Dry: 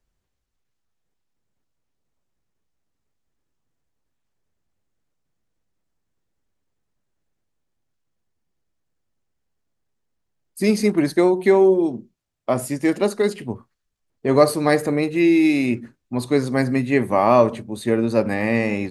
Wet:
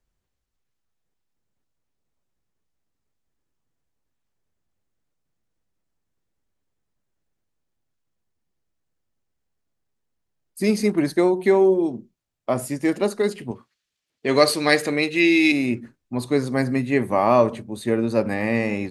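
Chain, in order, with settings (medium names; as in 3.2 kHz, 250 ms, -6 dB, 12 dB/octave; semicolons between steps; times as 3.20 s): 13.51–15.52 s: frequency weighting D; trim -2 dB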